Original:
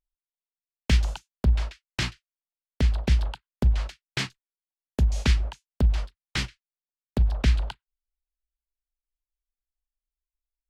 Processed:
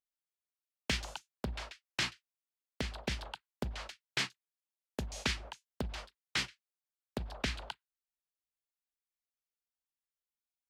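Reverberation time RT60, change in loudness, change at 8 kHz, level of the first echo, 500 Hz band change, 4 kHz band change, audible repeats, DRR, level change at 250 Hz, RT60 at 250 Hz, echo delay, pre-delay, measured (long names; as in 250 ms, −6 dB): no reverb audible, −12.0 dB, −3.5 dB, no echo audible, −6.5 dB, −3.5 dB, no echo audible, no reverb audible, −10.5 dB, no reverb audible, no echo audible, no reverb audible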